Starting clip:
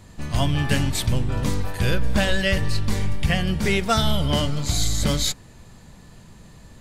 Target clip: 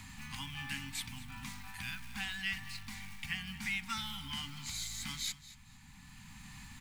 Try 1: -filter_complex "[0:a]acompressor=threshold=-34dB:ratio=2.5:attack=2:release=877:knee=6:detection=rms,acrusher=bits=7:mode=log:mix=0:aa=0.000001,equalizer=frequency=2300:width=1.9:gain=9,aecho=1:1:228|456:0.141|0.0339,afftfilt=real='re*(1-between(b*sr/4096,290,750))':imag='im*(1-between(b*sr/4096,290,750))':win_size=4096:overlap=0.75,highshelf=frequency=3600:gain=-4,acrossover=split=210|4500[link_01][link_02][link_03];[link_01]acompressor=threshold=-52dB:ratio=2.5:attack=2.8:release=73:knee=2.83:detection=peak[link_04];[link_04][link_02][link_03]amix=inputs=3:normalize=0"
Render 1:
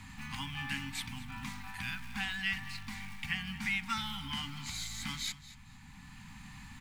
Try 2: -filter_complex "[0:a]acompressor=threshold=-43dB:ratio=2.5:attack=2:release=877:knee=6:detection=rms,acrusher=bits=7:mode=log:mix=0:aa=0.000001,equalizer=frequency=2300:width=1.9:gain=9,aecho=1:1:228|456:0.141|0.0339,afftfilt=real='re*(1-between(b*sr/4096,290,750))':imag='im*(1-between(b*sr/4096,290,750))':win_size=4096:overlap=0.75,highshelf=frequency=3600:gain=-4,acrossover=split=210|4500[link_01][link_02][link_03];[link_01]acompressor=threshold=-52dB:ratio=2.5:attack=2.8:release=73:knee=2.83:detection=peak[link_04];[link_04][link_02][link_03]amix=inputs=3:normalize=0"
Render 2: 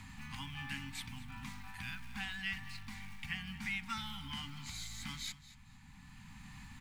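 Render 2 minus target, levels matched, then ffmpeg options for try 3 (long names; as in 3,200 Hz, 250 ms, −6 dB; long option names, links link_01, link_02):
8,000 Hz band −4.0 dB
-filter_complex "[0:a]acompressor=threshold=-43dB:ratio=2.5:attack=2:release=877:knee=6:detection=rms,acrusher=bits=7:mode=log:mix=0:aa=0.000001,equalizer=frequency=2300:width=1.9:gain=9,aecho=1:1:228|456:0.141|0.0339,afftfilt=real='re*(1-between(b*sr/4096,290,750))':imag='im*(1-between(b*sr/4096,290,750))':win_size=4096:overlap=0.75,highshelf=frequency=3600:gain=4.5,acrossover=split=210|4500[link_01][link_02][link_03];[link_01]acompressor=threshold=-52dB:ratio=2.5:attack=2.8:release=73:knee=2.83:detection=peak[link_04];[link_04][link_02][link_03]amix=inputs=3:normalize=0"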